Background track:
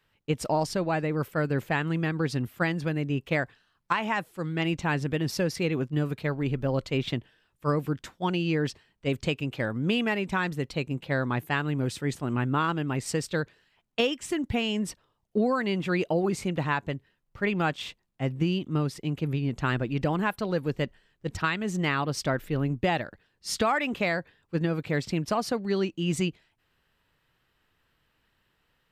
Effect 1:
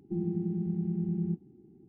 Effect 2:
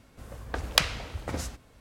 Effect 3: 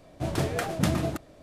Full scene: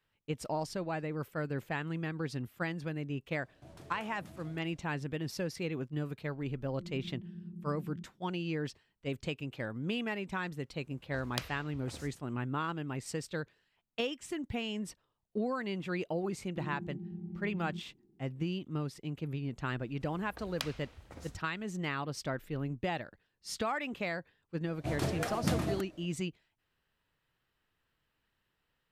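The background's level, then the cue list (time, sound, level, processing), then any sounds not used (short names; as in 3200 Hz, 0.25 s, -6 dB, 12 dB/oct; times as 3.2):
background track -9 dB
3.42 add 3 -15 dB + compressor 2.5:1, threshold -38 dBFS
6.68 add 1 -13.5 dB + rippled Chebyshev low-pass 690 Hz, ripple 6 dB
10.6 add 2 -16 dB + spectral noise reduction 9 dB
16.45 add 1 -11 dB
19.83 add 2 -16.5 dB
24.64 add 3 -6 dB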